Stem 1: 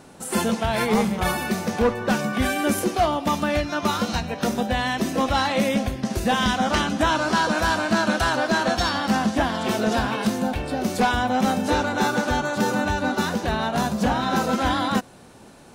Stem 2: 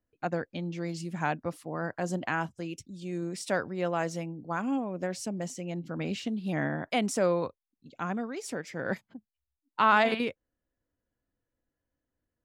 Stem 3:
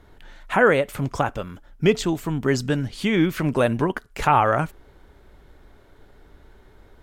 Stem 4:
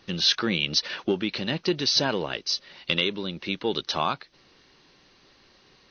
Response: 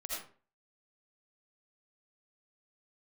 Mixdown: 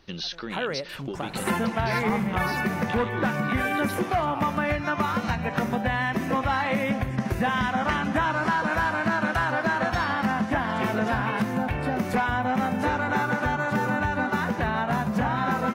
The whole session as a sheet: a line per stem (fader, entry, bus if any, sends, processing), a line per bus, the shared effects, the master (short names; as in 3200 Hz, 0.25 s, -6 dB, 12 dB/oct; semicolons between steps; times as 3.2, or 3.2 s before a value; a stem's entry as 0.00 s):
+2.0 dB, 1.15 s, no send, graphic EQ 125/1000/2000/4000/8000 Hz +11/+5/+9/-6/-7 dB
-11.5 dB, 0.00 s, no send, auto duck -10 dB, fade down 0.30 s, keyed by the third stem
-11.0 dB, 0.00 s, no send, dry
-4.0 dB, 0.00 s, no send, compressor, threshold -26 dBFS, peak gain reduction 9.5 dB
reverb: off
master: compressor 3:1, threshold -25 dBFS, peak gain reduction 12 dB